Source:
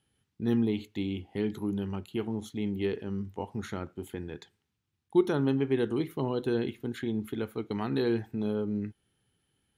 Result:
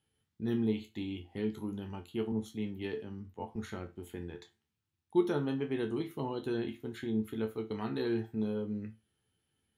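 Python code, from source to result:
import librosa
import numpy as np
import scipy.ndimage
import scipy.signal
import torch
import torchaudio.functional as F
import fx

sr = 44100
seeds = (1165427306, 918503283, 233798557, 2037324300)

y = fx.resonator_bank(x, sr, root=38, chord='minor', decay_s=0.23)
y = fx.band_widen(y, sr, depth_pct=40, at=(2.32, 3.56))
y = F.gain(torch.from_numpy(y), 5.0).numpy()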